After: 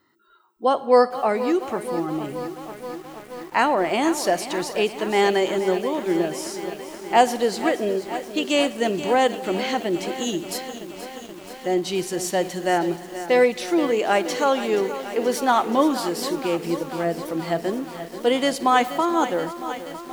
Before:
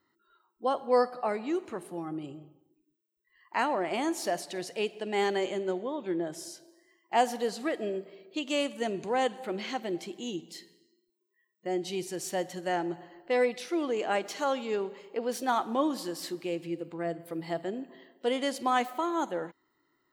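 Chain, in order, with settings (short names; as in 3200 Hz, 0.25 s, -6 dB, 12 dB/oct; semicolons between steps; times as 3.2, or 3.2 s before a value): 10.15–10.58 bell 13000 Hz +15 dB 1.2 oct; lo-fi delay 0.478 s, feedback 80%, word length 8-bit, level -12 dB; gain +9 dB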